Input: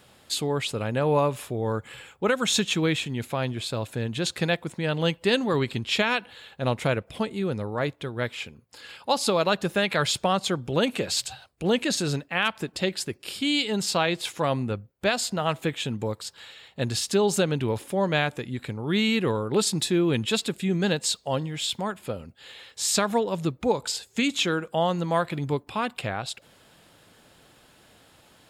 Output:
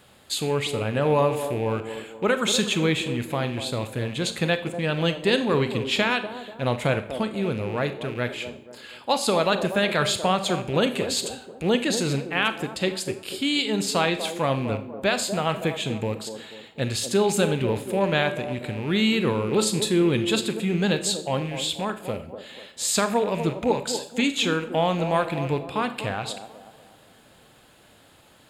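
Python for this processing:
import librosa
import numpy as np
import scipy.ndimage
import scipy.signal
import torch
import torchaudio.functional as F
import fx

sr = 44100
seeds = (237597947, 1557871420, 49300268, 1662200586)

y = fx.rattle_buzz(x, sr, strikes_db=-36.0, level_db=-31.0)
y = fx.peak_eq(y, sr, hz=5500.0, db=-6.5, octaves=0.22)
y = fx.echo_wet_bandpass(y, sr, ms=243, feedback_pct=42, hz=440.0, wet_db=-8)
y = fx.rev_schroeder(y, sr, rt60_s=0.48, comb_ms=29, drr_db=10.0)
y = F.gain(torch.from_numpy(y), 1.0).numpy()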